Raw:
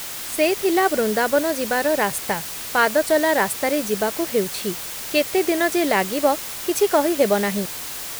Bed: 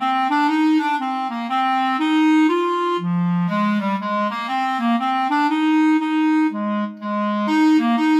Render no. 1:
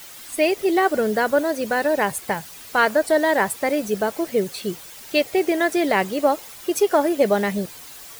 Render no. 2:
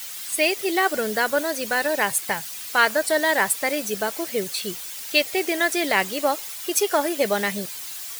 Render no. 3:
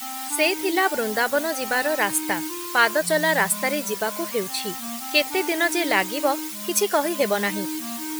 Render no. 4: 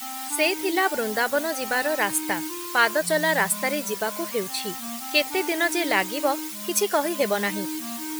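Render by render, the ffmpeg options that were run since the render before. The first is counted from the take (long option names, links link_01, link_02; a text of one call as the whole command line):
ffmpeg -i in.wav -af "afftdn=noise_reduction=11:noise_floor=-32" out.wav
ffmpeg -i in.wav -af "tiltshelf=frequency=1300:gain=-6.5" out.wav
ffmpeg -i in.wav -i bed.wav -filter_complex "[1:a]volume=-16.5dB[link_01];[0:a][link_01]amix=inputs=2:normalize=0" out.wav
ffmpeg -i in.wav -af "volume=-1.5dB" out.wav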